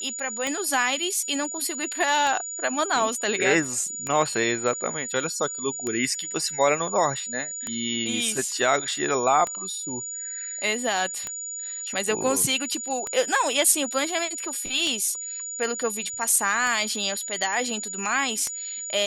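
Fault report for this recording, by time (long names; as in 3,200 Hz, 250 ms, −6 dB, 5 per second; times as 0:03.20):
scratch tick 33 1/3 rpm −14 dBFS
whistle 6,900 Hz −31 dBFS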